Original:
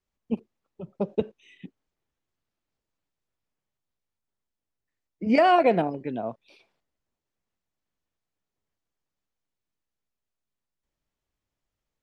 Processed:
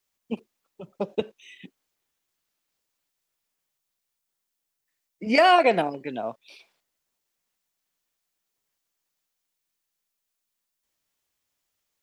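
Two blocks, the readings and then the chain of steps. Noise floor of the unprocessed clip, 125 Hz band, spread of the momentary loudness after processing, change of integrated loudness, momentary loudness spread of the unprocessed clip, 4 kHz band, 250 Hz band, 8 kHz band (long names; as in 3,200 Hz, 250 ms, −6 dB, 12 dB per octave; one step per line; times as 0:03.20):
below −85 dBFS, −4.5 dB, 19 LU, +2.5 dB, 15 LU, +8.0 dB, −3.0 dB, can't be measured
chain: spectral tilt +3 dB per octave
level +3 dB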